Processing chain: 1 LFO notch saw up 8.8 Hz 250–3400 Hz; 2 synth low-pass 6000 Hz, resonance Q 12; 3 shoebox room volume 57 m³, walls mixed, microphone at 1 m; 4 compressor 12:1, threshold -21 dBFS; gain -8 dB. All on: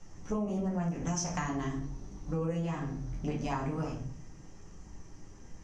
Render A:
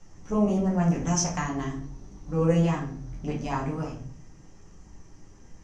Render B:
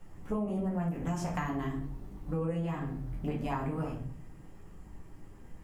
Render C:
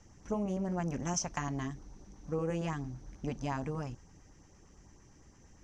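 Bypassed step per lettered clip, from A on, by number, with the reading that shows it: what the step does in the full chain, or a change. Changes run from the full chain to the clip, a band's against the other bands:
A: 4, mean gain reduction 3.0 dB; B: 2, 4 kHz band -6.0 dB; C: 3, momentary loudness spread change -10 LU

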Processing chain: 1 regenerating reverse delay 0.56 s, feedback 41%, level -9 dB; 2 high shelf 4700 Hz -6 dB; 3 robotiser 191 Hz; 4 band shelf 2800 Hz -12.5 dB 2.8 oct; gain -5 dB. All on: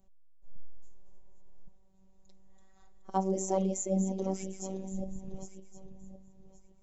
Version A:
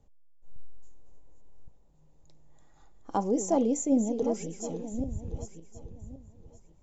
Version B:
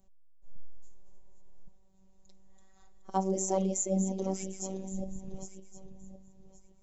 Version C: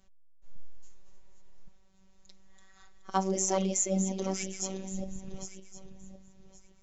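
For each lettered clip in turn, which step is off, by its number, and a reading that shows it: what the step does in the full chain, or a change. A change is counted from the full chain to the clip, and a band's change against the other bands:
3, 125 Hz band -6.0 dB; 2, 4 kHz band +3.0 dB; 4, momentary loudness spread change -4 LU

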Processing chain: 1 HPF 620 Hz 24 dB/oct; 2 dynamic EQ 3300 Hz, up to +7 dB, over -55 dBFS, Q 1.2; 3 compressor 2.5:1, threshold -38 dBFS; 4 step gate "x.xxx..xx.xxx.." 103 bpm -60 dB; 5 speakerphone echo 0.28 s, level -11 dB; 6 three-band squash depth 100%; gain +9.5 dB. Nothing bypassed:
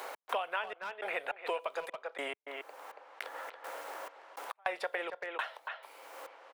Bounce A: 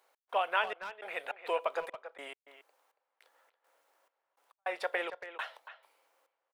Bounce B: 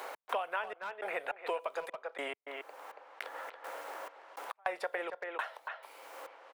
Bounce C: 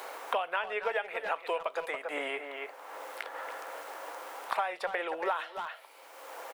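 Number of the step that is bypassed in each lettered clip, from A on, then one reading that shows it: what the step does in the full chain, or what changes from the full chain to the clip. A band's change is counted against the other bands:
6, momentary loudness spread change +4 LU; 2, 4 kHz band -3.0 dB; 4, 4 kHz band -2.0 dB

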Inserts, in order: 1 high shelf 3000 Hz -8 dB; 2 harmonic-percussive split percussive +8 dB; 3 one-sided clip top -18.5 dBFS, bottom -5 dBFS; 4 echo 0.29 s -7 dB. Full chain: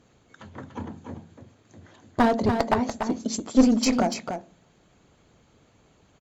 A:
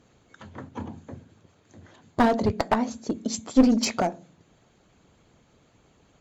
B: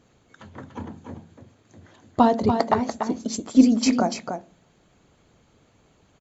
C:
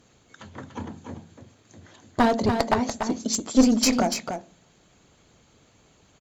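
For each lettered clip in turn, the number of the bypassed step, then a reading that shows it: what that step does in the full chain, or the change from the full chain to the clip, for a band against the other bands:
4, momentary loudness spread change -1 LU; 3, distortion -10 dB; 1, 4 kHz band +4.5 dB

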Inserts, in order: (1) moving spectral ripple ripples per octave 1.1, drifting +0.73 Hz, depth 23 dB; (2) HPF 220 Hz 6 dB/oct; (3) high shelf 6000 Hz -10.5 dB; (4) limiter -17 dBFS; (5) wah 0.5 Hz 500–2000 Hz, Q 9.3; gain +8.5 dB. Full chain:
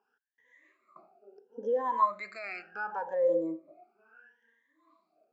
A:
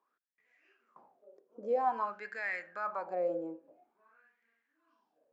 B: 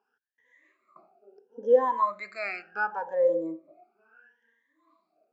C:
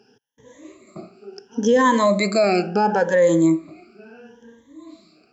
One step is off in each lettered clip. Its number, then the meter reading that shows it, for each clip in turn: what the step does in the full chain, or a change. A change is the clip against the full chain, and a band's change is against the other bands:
1, 2 kHz band +5.5 dB; 4, mean gain reduction 2.0 dB; 5, crest factor change -7.5 dB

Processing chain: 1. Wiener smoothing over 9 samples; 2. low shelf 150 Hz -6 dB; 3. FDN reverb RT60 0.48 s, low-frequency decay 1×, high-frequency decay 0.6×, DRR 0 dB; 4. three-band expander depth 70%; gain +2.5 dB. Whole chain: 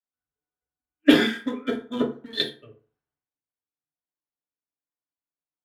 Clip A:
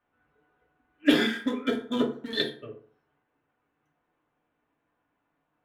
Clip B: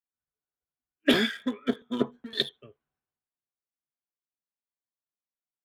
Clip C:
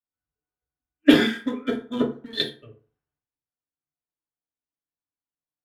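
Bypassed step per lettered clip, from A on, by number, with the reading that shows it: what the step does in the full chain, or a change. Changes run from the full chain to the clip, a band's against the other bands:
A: 4, crest factor change -2.0 dB; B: 3, momentary loudness spread change -3 LU; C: 2, 125 Hz band +2.5 dB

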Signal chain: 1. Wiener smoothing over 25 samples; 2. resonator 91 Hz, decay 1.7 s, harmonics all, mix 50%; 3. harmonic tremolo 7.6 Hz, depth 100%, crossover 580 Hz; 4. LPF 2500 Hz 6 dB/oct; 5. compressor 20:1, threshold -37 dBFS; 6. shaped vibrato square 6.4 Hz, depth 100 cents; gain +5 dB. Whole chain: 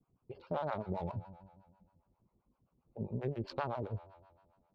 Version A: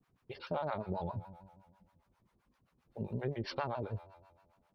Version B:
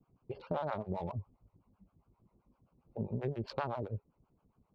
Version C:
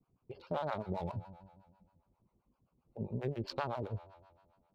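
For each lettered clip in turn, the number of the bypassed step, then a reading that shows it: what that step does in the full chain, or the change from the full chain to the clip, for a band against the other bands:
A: 1, 4 kHz band +5.5 dB; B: 2, momentary loudness spread change -5 LU; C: 4, 4 kHz band +5.0 dB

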